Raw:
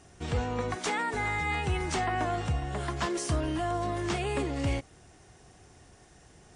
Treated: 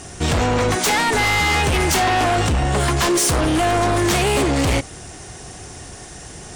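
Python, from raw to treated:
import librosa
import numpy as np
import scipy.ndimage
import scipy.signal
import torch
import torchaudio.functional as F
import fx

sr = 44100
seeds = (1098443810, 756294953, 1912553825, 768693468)

p1 = fx.high_shelf(x, sr, hz=5200.0, db=8.5)
p2 = fx.fold_sine(p1, sr, drive_db=13, ceiling_db=-17.0)
p3 = p1 + (p2 * librosa.db_to_amplitude(-8.0))
y = p3 * librosa.db_to_amplitude(6.5)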